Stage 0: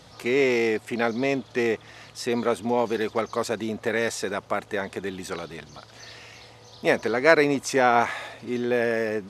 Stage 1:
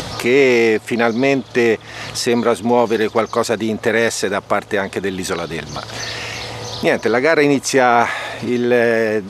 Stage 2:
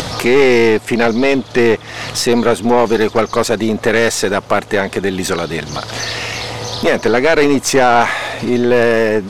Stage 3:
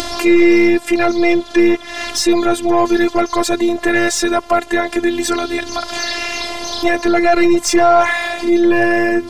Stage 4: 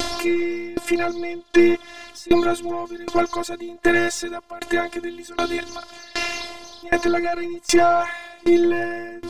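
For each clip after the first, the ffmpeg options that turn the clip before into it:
ffmpeg -i in.wav -af "acompressor=mode=upward:threshold=-25dB:ratio=2.5,alimiter=level_in=10.5dB:limit=-1dB:release=50:level=0:latency=1,volume=-1dB" out.wav
ffmpeg -i in.wav -af "aeval=exprs='(tanh(3.16*val(0)+0.45)-tanh(0.45))/3.16':channel_layout=same,volume=6dB" out.wav
ffmpeg -i in.wav -af "afftfilt=real='hypot(re,im)*cos(PI*b)':imag='0':win_size=512:overlap=0.75,acontrast=38,volume=-1dB" out.wav
ffmpeg -i in.wav -af "aeval=exprs='val(0)*pow(10,-24*if(lt(mod(1.3*n/s,1),2*abs(1.3)/1000),1-mod(1.3*n/s,1)/(2*abs(1.3)/1000),(mod(1.3*n/s,1)-2*abs(1.3)/1000)/(1-2*abs(1.3)/1000))/20)':channel_layout=same" out.wav

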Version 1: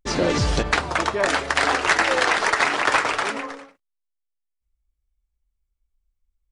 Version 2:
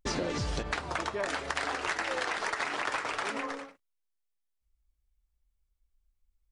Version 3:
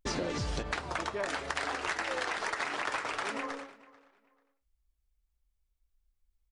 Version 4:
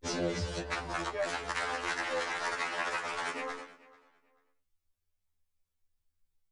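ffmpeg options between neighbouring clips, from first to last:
ffmpeg -i in.wav -af "acompressor=threshold=-29dB:ratio=6,volume=-1dB" out.wav
ffmpeg -i in.wav -filter_complex "[0:a]asplit=2[link_01][link_02];[link_02]adelay=440,lowpass=frequency=4000:poles=1,volume=-21dB,asplit=2[link_03][link_04];[link_04]adelay=440,lowpass=frequency=4000:poles=1,volume=0.26[link_05];[link_01][link_03][link_05]amix=inputs=3:normalize=0,volume=-1.5dB" out.wav
ffmpeg -i in.wav -af "afftfilt=real='re*2*eq(mod(b,4),0)':imag='im*2*eq(mod(b,4),0)':win_size=2048:overlap=0.75,volume=2dB" out.wav

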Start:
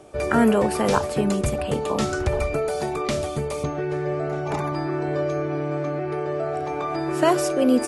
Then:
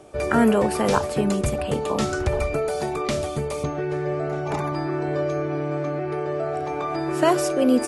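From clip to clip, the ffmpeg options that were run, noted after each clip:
ffmpeg -i in.wav -af anull out.wav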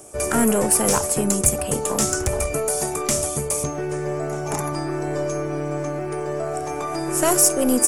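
ffmpeg -i in.wav -af "asoftclip=type=tanh:threshold=-10.5dB,aeval=exprs='0.299*(cos(1*acos(clip(val(0)/0.299,-1,1)))-cos(1*PI/2))+0.0237*(cos(4*acos(clip(val(0)/0.299,-1,1)))-cos(4*PI/2))':channel_layout=same,aexciter=amount=4.7:drive=9.1:freq=5800" out.wav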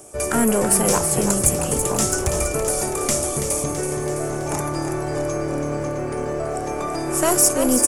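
ffmpeg -i in.wav -filter_complex "[0:a]asplit=9[link_01][link_02][link_03][link_04][link_05][link_06][link_07][link_08][link_09];[link_02]adelay=330,afreqshift=-38,volume=-8dB[link_10];[link_03]adelay=660,afreqshift=-76,volume=-12.2dB[link_11];[link_04]adelay=990,afreqshift=-114,volume=-16.3dB[link_12];[link_05]adelay=1320,afreqshift=-152,volume=-20.5dB[link_13];[link_06]adelay=1650,afreqshift=-190,volume=-24.6dB[link_14];[link_07]adelay=1980,afreqshift=-228,volume=-28.8dB[link_15];[link_08]adelay=2310,afreqshift=-266,volume=-32.9dB[link_16];[link_09]adelay=2640,afreqshift=-304,volume=-37.1dB[link_17];[link_01][link_10][link_11][link_12][link_13][link_14][link_15][link_16][link_17]amix=inputs=9:normalize=0" out.wav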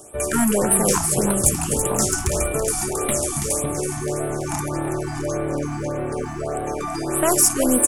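ffmpeg -i in.wav -af "afftfilt=real='re*(1-between(b*sr/1024,430*pow(5900/430,0.5+0.5*sin(2*PI*1.7*pts/sr))/1.41,430*pow(5900/430,0.5+0.5*sin(2*PI*1.7*pts/sr))*1.41))':imag='im*(1-between(b*sr/1024,430*pow(5900/430,0.5+0.5*sin(2*PI*1.7*pts/sr))/1.41,430*pow(5900/430,0.5+0.5*sin(2*PI*1.7*pts/sr))*1.41))':win_size=1024:overlap=0.75" out.wav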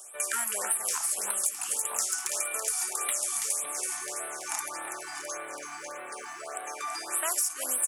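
ffmpeg -i in.wav -af "highpass=1300,acompressor=threshold=-25dB:ratio=6,volume=-1dB" out.wav

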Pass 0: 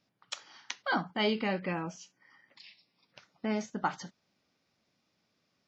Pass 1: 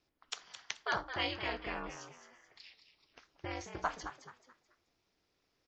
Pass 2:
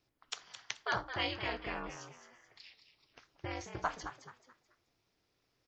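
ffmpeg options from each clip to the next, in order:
ffmpeg -i in.wav -filter_complex "[0:a]acrossover=split=670[link_01][link_02];[link_01]acompressor=threshold=-40dB:ratio=6[link_03];[link_03][link_02]amix=inputs=2:normalize=0,aeval=exprs='val(0)*sin(2*PI*130*n/s)':channel_layout=same,asplit=5[link_04][link_05][link_06][link_07][link_08];[link_05]adelay=216,afreqshift=100,volume=-10dB[link_09];[link_06]adelay=432,afreqshift=200,volume=-19.9dB[link_10];[link_07]adelay=648,afreqshift=300,volume=-29.8dB[link_11];[link_08]adelay=864,afreqshift=400,volume=-39.7dB[link_12];[link_04][link_09][link_10][link_11][link_12]amix=inputs=5:normalize=0" out.wav
ffmpeg -i in.wav -af "equalizer=frequency=120:width=4:gain=8" out.wav

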